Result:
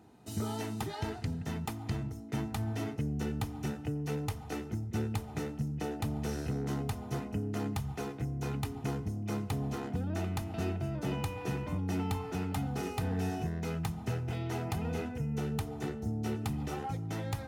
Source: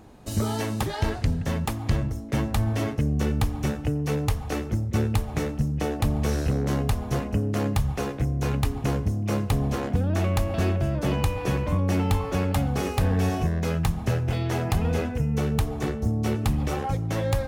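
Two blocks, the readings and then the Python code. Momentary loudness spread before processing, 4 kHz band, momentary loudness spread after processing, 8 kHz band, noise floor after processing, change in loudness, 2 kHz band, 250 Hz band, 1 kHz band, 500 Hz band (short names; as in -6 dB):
3 LU, -9.5 dB, 3 LU, -9.0 dB, -44 dBFS, -10.0 dB, -9.5 dB, -8.0 dB, -8.5 dB, -10.0 dB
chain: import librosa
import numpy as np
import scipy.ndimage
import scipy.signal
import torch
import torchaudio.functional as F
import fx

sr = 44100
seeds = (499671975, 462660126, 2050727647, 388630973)

y = scipy.signal.sosfilt(scipy.signal.butter(2, 84.0, 'highpass', fs=sr, output='sos'), x)
y = fx.notch_comb(y, sr, f0_hz=560.0)
y = y * librosa.db_to_amplitude(-8.0)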